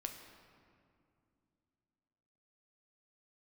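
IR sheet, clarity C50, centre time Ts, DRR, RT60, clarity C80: 6.5 dB, 40 ms, 3.5 dB, 2.5 s, 8.0 dB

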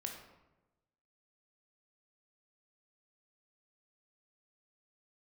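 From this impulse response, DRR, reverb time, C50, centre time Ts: 2.0 dB, 1.0 s, 5.0 dB, 34 ms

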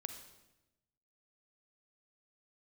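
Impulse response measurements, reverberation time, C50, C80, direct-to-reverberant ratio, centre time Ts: 1.0 s, 7.5 dB, 10.0 dB, 7.0 dB, 19 ms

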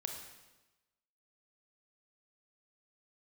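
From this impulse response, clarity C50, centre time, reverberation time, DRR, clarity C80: 4.5 dB, 38 ms, 1.1 s, 2.5 dB, 6.5 dB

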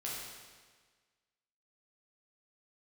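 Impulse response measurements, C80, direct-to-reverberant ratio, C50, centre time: 1.5 dB, −6.0 dB, −0.5 dB, 92 ms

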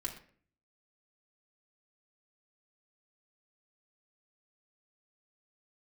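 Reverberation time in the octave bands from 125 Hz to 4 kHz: 0.65, 0.65, 0.55, 0.45, 0.45, 0.35 seconds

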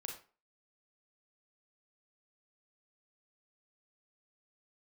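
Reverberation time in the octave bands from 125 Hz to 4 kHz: 0.35, 0.35, 0.40, 0.40, 0.35, 0.25 seconds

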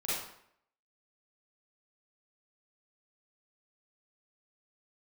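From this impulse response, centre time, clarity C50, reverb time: 75 ms, −3.0 dB, 0.70 s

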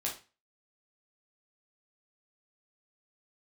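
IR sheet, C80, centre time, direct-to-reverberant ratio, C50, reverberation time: 15.5 dB, 23 ms, −3.0 dB, 8.5 dB, 0.30 s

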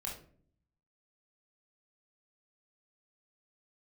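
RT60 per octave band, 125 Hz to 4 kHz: 1.0, 0.85, 0.60, 0.40, 0.35, 0.30 seconds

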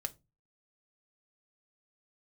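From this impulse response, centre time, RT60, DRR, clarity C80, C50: 3 ms, 0.25 s, 7.0 dB, 30.5 dB, 22.5 dB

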